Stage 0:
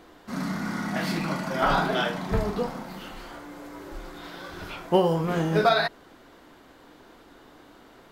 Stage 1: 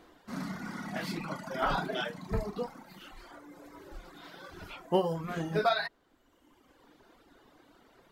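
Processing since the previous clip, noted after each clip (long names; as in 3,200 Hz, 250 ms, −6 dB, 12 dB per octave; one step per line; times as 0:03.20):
reverb reduction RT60 1.4 s
level −6 dB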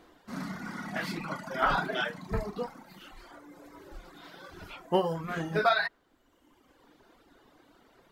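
dynamic equaliser 1,600 Hz, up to +6 dB, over −45 dBFS, Q 0.96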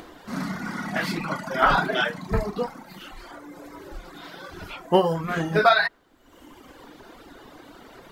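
upward compression, threshold −45 dBFS
level +7.5 dB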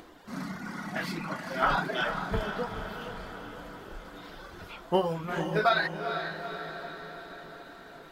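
feedback delay with all-pass diffusion 452 ms, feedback 61%, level −8 dB
level −7 dB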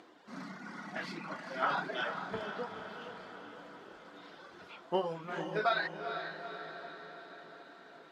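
band-pass filter 210–6,300 Hz
level −6 dB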